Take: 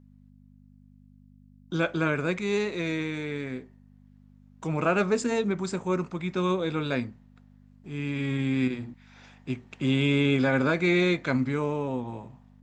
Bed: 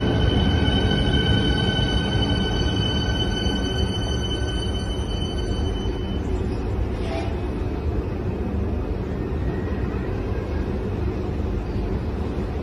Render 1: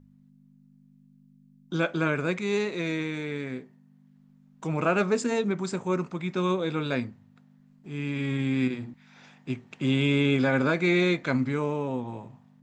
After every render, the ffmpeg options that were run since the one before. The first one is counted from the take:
-af "bandreject=f=50:t=h:w=4,bandreject=f=100:t=h:w=4"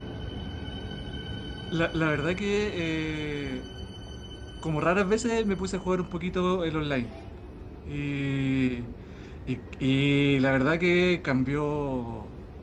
-filter_complex "[1:a]volume=-17dB[a];[0:a][a]amix=inputs=2:normalize=0"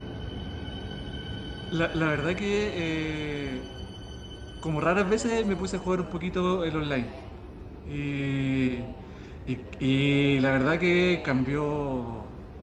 -filter_complex "[0:a]asplit=7[a][b][c][d][e][f][g];[b]adelay=82,afreqshift=130,volume=-17.5dB[h];[c]adelay=164,afreqshift=260,volume=-21.7dB[i];[d]adelay=246,afreqshift=390,volume=-25.8dB[j];[e]adelay=328,afreqshift=520,volume=-30dB[k];[f]adelay=410,afreqshift=650,volume=-34.1dB[l];[g]adelay=492,afreqshift=780,volume=-38.3dB[m];[a][h][i][j][k][l][m]amix=inputs=7:normalize=0"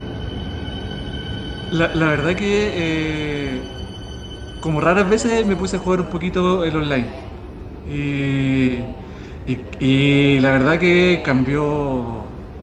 -af "volume=9dB"

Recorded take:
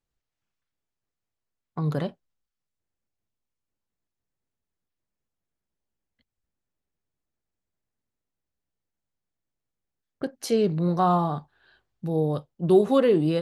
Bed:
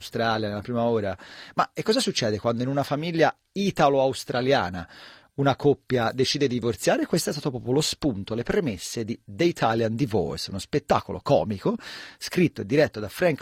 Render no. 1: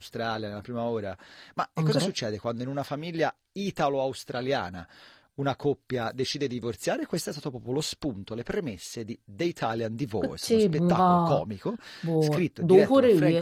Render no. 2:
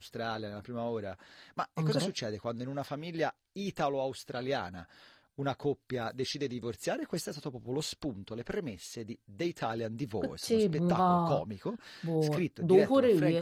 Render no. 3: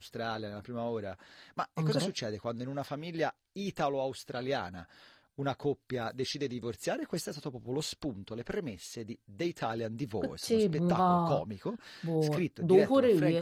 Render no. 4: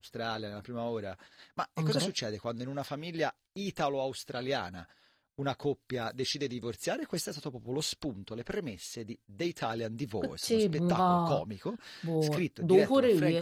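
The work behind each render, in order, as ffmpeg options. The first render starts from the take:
-filter_complex "[1:a]volume=-6.5dB[a];[0:a][a]amix=inputs=2:normalize=0"
-af "volume=-5.5dB"
-af anull
-af "agate=range=-10dB:threshold=-54dB:ratio=16:detection=peak,adynamicequalizer=threshold=0.00562:dfrequency=2000:dqfactor=0.7:tfrequency=2000:tqfactor=0.7:attack=5:release=100:ratio=0.375:range=2:mode=boostabove:tftype=highshelf"

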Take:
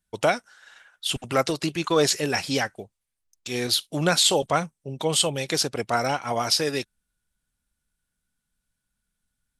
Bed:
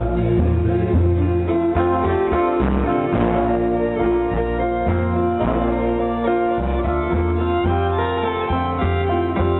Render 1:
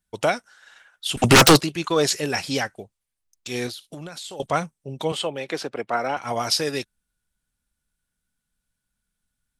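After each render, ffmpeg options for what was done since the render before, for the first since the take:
-filter_complex "[0:a]asettb=1/sr,asplit=3[a][b][c];[a]atrim=end=1.174[d];[b]atrim=start=1.17:end=1.61,asetpts=PTS-STARTPTS,afade=t=in:d=0.004:c=qsin,afade=t=out:st=0.436:d=0.004:c=qsin,aeval=exprs='0.447*sin(PI/2*7.08*val(0)/0.447)':c=same[e];[c]atrim=start=1.606[f];[d][e]acrossfade=d=0.004:c1=hsin:c2=qsin[g];[g][f]acrossfade=d=0.004:c1=qsin:c2=hsin,asettb=1/sr,asplit=3[h][i][j];[h]atrim=end=3.684[k];[i]atrim=start=3.68:end=4.4,asetpts=PTS-STARTPTS,afade=t=in:d=0.004:c=qsin,afade=t=out:st=0.716:d=0.004:c=qsin,acompressor=threshold=-32dB:ratio=20:attack=3.2:release=140:knee=1:detection=peak[l];[j]atrim=start=4.396[m];[k][l]acrossfade=d=0.004:c1=hsin:c2=qsin[n];[n][m]acrossfade=d=0.004:c1=qsin:c2=hsin,asettb=1/sr,asplit=3[o][p][q];[o]atrim=end=5.124[r];[p]atrim=start=5.12:end=6.17,asetpts=PTS-STARTPTS,afade=t=in:d=0.004:c=qsin,afade=t=out:st=1.046:d=0.004:c=qsin,acrossover=split=220 3000:gain=0.224 1 0.178[s][t][u];[s][t][u]amix=inputs=3:normalize=0[v];[q]atrim=start=6.166[w];[r][v]acrossfade=d=0.004:c1=hsin:c2=qsin[x];[x][w]acrossfade=d=0.004:c1=qsin:c2=hsin"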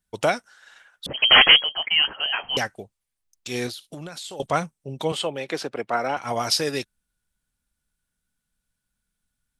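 -filter_complex "[0:a]asettb=1/sr,asplit=3[a][b][c];[a]atrim=end=1.064[d];[b]atrim=start=1.06:end=2.57,asetpts=PTS-STARTPTS,afade=t=in:d=0.004:c=qsin,afade=t=out:st=1.506:d=0.004:c=qsin,lowpass=f=2.8k:t=q:w=0.5098,lowpass=f=2.8k:t=q:w=0.6013,lowpass=f=2.8k:t=q:w=0.9,lowpass=f=2.8k:t=q:w=2.563,afreqshift=-3300[e];[c]atrim=start=2.566[f];[d][e]acrossfade=d=0.004:c1=hsin:c2=qsin[g];[g][f]acrossfade=d=0.004:c1=qsin:c2=hsin"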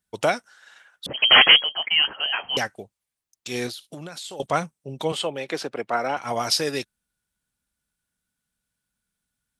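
-af "highpass=f=95:p=1"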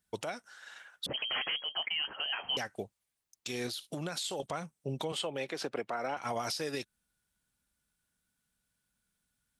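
-af "acompressor=threshold=-27dB:ratio=5,alimiter=level_in=1dB:limit=-24dB:level=0:latency=1:release=160,volume=-1dB"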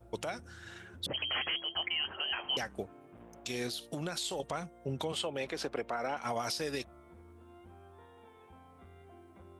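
-filter_complex "[1:a]volume=-36.5dB[a];[0:a][a]amix=inputs=2:normalize=0"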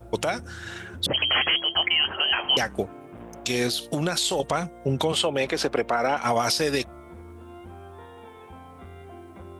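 -af "volume=12dB"

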